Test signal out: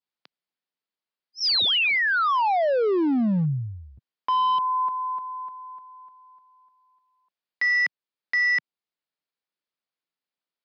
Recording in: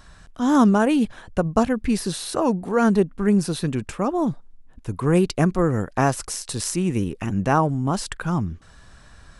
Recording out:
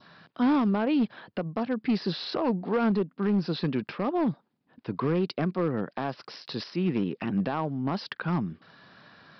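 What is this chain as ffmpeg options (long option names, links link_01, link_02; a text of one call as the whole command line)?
ffmpeg -i in.wav -af "highpass=frequency=150:width=0.5412,highpass=frequency=150:width=1.3066,adynamicequalizer=threshold=0.0158:dfrequency=1800:dqfactor=1.6:tfrequency=1800:tqfactor=1.6:attack=5:release=100:ratio=0.375:range=1.5:mode=cutabove:tftype=bell,alimiter=limit=-16dB:level=0:latency=1:release=452,aresample=11025,volume=19.5dB,asoftclip=hard,volume=-19.5dB,aresample=44100" out.wav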